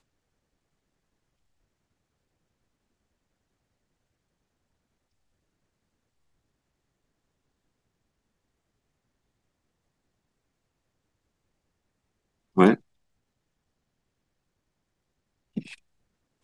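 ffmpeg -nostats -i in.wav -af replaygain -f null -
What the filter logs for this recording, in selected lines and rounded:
track_gain = +62.8 dB
track_peak = 0.421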